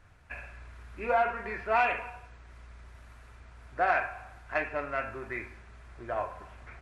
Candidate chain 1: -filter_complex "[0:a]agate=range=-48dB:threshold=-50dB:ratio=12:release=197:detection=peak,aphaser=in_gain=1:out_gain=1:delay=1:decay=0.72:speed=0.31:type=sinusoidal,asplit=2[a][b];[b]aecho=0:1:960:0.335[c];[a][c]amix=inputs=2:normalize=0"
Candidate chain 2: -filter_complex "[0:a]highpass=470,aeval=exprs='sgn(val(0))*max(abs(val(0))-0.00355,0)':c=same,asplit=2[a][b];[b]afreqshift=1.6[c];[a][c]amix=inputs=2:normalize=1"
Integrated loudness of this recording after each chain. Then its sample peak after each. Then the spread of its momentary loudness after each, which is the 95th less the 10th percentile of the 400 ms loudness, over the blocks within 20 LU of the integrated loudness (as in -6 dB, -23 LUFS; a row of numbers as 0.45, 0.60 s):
-32.0, -36.0 LUFS; -12.0, -18.5 dBFS; 15, 21 LU